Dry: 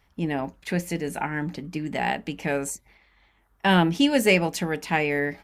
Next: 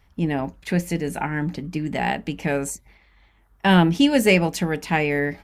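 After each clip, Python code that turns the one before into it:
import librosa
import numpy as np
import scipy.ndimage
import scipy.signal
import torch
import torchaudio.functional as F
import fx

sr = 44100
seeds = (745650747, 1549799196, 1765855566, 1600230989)

y = fx.low_shelf(x, sr, hz=180.0, db=7.0)
y = y * 10.0 ** (1.5 / 20.0)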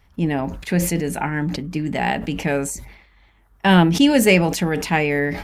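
y = fx.sustainer(x, sr, db_per_s=75.0)
y = y * 10.0 ** (2.0 / 20.0)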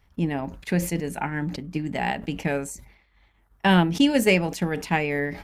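y = fx.transient(x, sr, attack_db=3, sustain_db=-6)
y = y * 10.0 ** (-5.5 / 20.0)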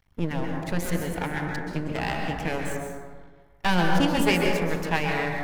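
y = np.maximum(x, 0.0)
y = fx.rev_plate(y, sr, seeds[0], rt60_s=1.5, hf_ratio=0.35, predelay_ms=115, drr_db=0.5)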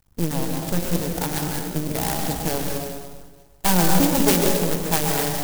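y = fx.clock_jitter(x, sr, seeds[1], jitter_ms=0.14)
y = y * 10.0 ** (4.0 / 20.0)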